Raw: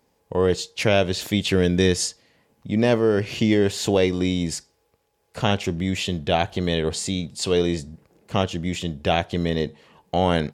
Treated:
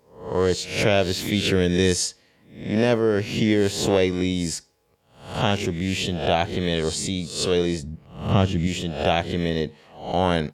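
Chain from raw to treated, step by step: spectral swells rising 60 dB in 0.51 s; 7.83–8.67 tone controls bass +8 dB, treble -5 dB; gain -1.5 dB

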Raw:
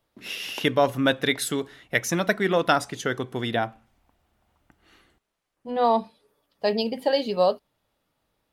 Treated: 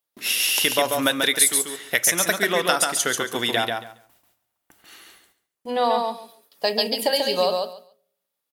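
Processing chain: RIAA curve recording; gate with hold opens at -52 dBFS; dynamic EQ 9400 Hz, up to +7 dB, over -40 dBFS, Q 1.9; compressor 2.5:1, threshold -28 dBFS, peak gain reduction 13 dB; feedback echo 0.139 s, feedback 17%, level -4 dB; on a send at -19.5 dB: reverb RT60 0.65 s, pre-delay 4 ms; on the sum: gain +7 dB

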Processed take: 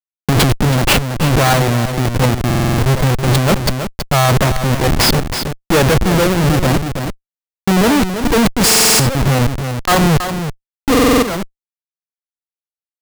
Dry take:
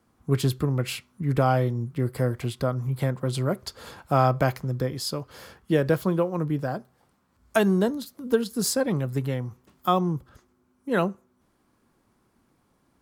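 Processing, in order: HPF 130 Hz 12 dB/oct; Schmitt trigger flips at -31 dBFS; on a send: echo 0.326 s -10.5 dB; on the sum: stuck buffer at 2.46/7.35/8.67/10.9, samples 2048, times 6; maximiser +26 dB; gain -7.5 dB

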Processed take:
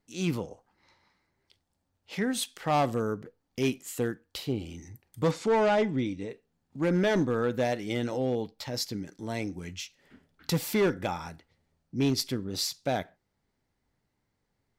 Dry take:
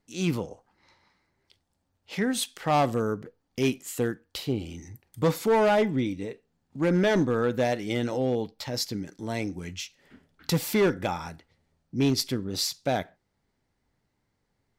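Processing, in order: 5.31–6.3 LPF 8300 Hz 24 dB/oct; gain -2.5 dB

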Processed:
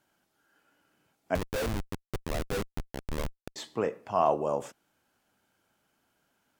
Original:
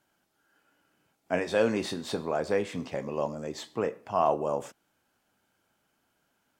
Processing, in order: 1.35–3.56 Schmitt trigger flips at -25.5 dBFS

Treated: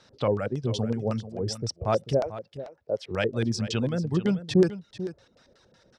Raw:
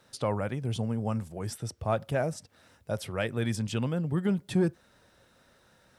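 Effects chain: 2.2–3.11 three-band isolator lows -15 dB, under 360 Hz, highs -14 dB, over 2800 Hz; reverb removal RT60 0.68 s; LFO low-pass square 5.4 Hz 470–5300 Hz; on a send: echo 0.441 s -13.5 dB; on the sum: gain +3 dB

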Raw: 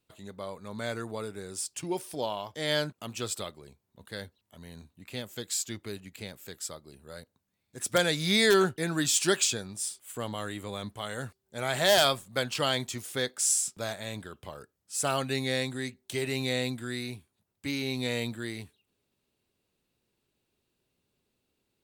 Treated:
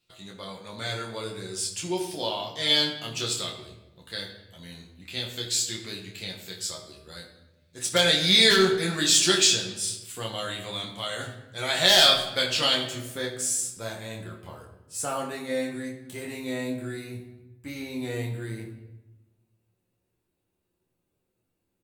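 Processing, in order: bell 3900 Hz +10.5 dB 1.7 oct, from 12.74 s -2.5 dB, from 15.05 s -9 dB; early reflections 11 ms -4 dB, 27 ms -3.5 dB; shoebox room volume 500 m³, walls mixed, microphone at 0.84 m; gain -3.5 dB

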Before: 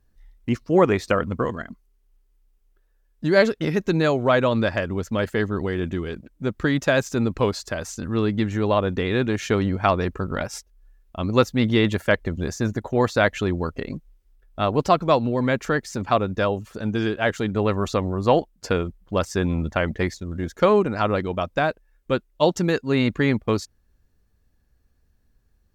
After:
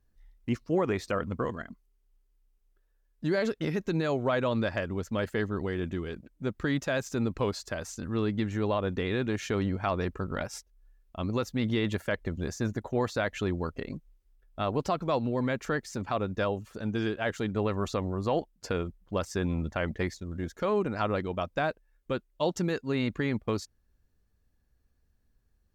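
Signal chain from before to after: limiter -11.5 dBFS, peak gain reduction 8 dB; gain -6.5 dB

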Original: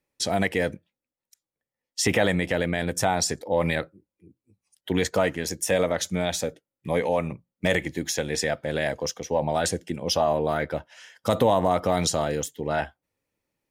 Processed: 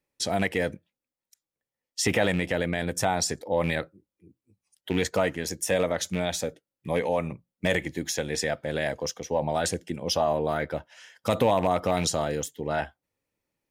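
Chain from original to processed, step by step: rattling part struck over -24 dBFS, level -24 dBFS; gain -2 dB

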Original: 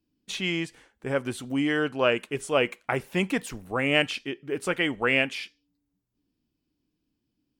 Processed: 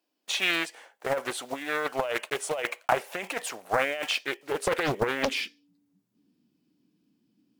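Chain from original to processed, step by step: block floating point 5-bit; negative-ratio compressor -27 dBFS, ratio -0.5; high-pass sweep 650 Hz -> 190 Hz, 4.47–5.72; Doppler distortion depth 0.99 ms; gain +1.5 dB

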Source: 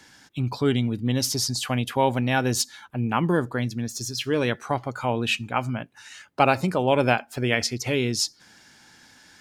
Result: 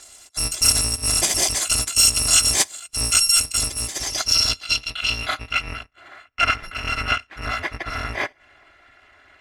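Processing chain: FFT order left unsorted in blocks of 256 samples; low-pass sweep 7800 Hz -> 1900 Hz, 3.81–5.9; gain +6 dB

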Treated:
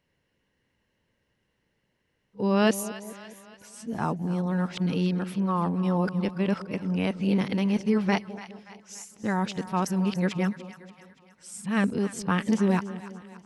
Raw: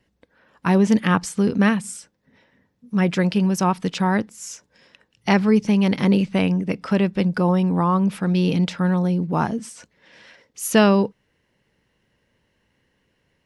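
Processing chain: whole clip reversed; split-band echo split 740 Hz, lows 0.208 s, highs 0.288 s, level -14 dB; gain -7 dB

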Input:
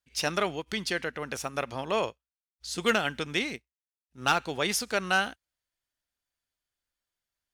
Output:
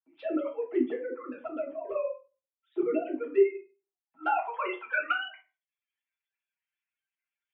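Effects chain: sine-wave speech; reverb removal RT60 0.5 s; limiter -22 dBFS, peak gain reduction 11 dB; envelope flanger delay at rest 6.4 ms, full sweep at -28 dBFS; band-pass sweep 340 Hz -> 2400 Hz, 3.1–5.49; reverb RT60 0.30 s, pre-delay 3 ms, DRR -6 dB; gain +7 dB

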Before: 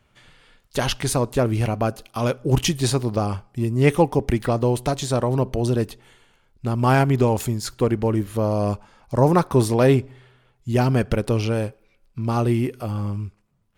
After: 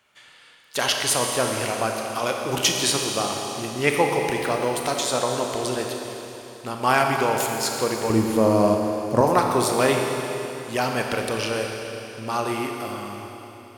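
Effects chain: HPF 1100 Hz 6 dB/oct, from 8.1 s 230 Hz, from 9.21 s 1100 Hz; Schroeder reverb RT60 3.5 s, combs from 28 ms, DRR 1.5 dB; gain +4 dB

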